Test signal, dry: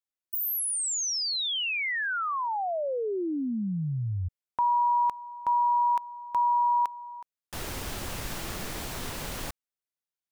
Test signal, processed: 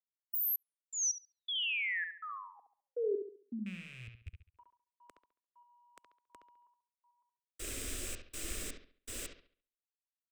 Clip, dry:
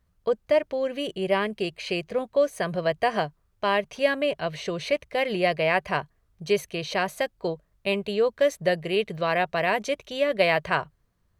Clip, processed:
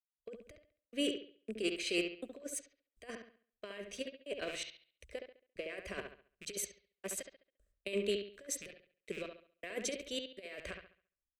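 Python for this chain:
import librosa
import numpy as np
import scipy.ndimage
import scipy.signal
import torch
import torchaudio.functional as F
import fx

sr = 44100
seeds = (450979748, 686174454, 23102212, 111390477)

y = fx.rattle_buzz(x, sr, strikes_db=-37.0, level_db=-30.0)
y = fx.gate_hold(y, sr, open_db=-49.0, close_db=-53.0, hold_ms=119.0, range_db=-17, attack_ms=9.5, release_ms=28.0)
y = fx.peak_eq(y, sr, hz=8100.0, db=12.0, octaves=0.38)
y = fx.notch(y, sr, hz=4400.0, q=13.0)
y = fx.over_compress(y, sr, threshold_db=-27.0, ratio=-0.5)
y = fx.step_gate(y, sr, bpm=81, pattern='.xx..x..xxx', floor_db=-60.0, edge_ms=4.5)
y = fx.fixed_phaser(y, sr, hz=360.0, stages=4)
y = fx.echo_bbd(y, sr, ms=69, stages=2048, feedback_pct=39, wet_db=-6)
y = fx.band_widen(y, sr, depth_pct=40)
y = y * 10.0 ** (-8.0 / 20.0)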